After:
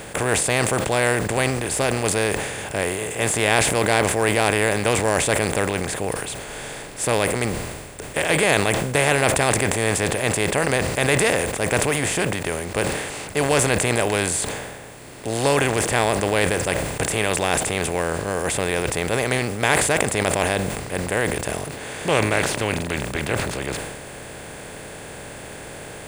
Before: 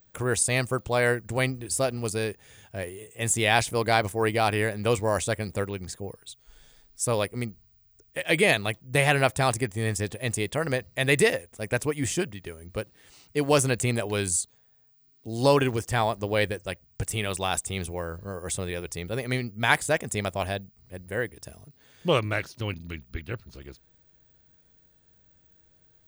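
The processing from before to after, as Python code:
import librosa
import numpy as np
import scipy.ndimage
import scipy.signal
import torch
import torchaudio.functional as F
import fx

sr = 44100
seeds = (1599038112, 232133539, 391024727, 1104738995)

y = fx.bin_compress(x, sr, power=0.4)
y = fx.sustainer(y, sr, db_per_s=38.0)
y = y * librosa.db_to_amplitude(-3.0)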